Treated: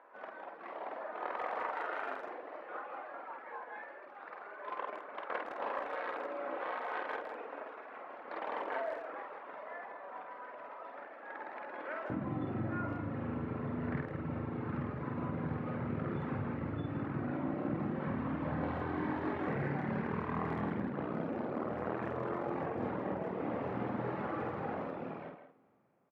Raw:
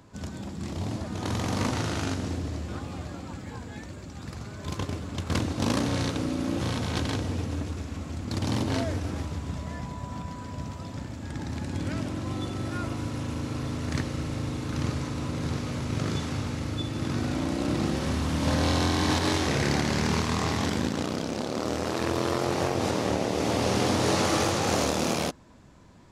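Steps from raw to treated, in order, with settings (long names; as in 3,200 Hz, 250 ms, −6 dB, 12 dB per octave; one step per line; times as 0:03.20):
fade-out on the ending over 4.89 s
high-pass filter 520 Hz 24 dB per octave, from 0:12.10 110 Hz
reverb reduction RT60 1 s
low-pass filter 1,900 Hz 24 dB per octave
downward compressor 6 to 1, threshold −36 dBFS, peak gain reduction 12 dB
double-tracking delay 49 ms −3.5 dB
far-end echo of a speakerphone 160 ms, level −8 dB
coupled-rooms reverb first 0.29 s, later 4.2 s, from −18 dB, DRR 16.5 dB
level +1 dB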